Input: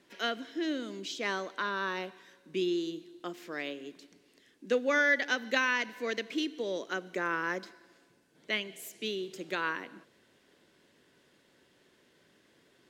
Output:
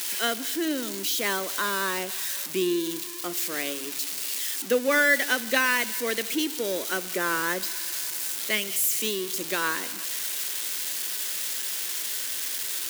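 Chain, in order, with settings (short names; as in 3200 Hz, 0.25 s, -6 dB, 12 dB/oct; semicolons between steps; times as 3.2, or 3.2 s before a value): switching spikes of -25.5 dBFS; gain +5 dB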